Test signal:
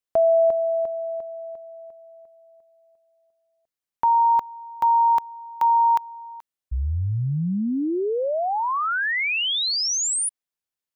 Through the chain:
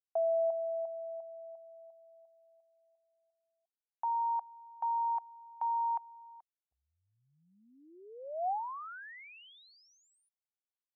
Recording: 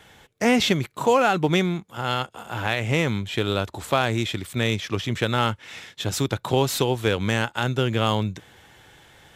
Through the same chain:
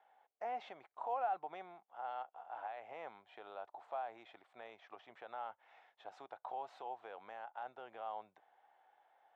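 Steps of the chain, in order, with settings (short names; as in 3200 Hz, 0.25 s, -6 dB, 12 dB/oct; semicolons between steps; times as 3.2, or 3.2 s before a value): limiter -13 dBFS; ladder band-pass 810 Hz, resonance 70%; gain -8 dB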